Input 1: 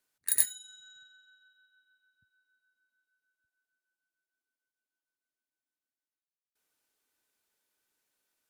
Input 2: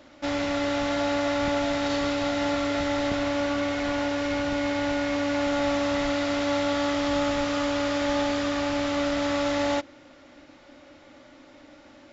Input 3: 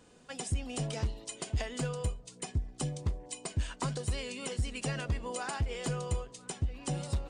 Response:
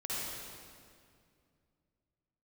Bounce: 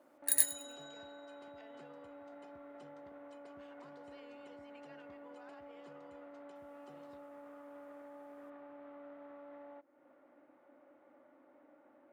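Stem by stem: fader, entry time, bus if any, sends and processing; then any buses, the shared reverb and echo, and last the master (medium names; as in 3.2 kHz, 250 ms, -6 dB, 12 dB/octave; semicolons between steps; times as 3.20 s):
-2.5 dB, 0.00 s, no bus, no send, echo send -20 dB, none
-10.5 dB, 0.00 s, bus A, no send, no echo send, compression 4:1, threshold -37 dBFS, peak gain reduction 13 dB; low-pass 1.2 kHz 12 dB/octave
-16.0 dB, 0.00 s, bus A, no send, no echo send, none
bus A: 0.0 dB, band-pass 320–2800 Hz; peak limiter -44.5 dBFS, peak gain reduction 7 dB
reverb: none
echo: feedback delay 103 ms, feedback 23%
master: none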